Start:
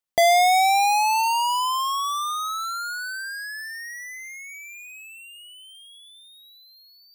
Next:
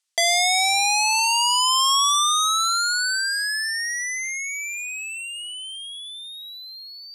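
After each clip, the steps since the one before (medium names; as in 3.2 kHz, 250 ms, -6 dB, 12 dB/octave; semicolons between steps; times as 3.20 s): frequency weighting ITU-R 468; in parallel at +2.5 dB: compressor with a negative ratio -21 dBFS, ratio -0.5; on the sum: trim -6.5 dB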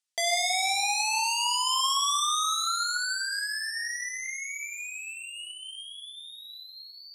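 tape echo 97 ms, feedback 47%, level -13.5 dB, low-pass 4.3 kHz; gated-style reverb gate 370 ms falling, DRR 4.5 dB; trim -8.5 dB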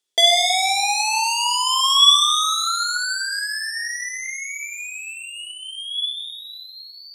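small resonant body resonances 400/3400 Hz, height 16 dB, ringing for 25 ms; trim +5.5 dB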